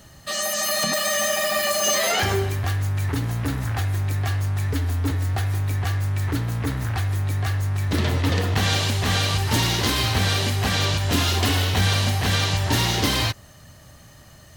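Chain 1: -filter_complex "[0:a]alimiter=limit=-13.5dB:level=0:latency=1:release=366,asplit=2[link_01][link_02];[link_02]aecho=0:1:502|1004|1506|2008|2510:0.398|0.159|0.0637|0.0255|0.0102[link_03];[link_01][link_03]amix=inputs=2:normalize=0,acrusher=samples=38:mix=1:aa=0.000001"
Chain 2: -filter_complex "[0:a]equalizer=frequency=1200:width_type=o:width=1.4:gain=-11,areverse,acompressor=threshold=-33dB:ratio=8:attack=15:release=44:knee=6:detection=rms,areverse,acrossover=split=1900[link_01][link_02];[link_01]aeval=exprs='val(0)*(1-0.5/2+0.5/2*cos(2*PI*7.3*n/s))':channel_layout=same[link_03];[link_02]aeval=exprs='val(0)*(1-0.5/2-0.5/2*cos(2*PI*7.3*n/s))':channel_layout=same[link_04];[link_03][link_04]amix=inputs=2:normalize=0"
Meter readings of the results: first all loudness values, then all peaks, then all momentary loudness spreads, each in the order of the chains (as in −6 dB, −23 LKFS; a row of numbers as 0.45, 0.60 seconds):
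−24.0, −36.0 LKFS; −11.5, −23.5 dBFS; 5, 4 LU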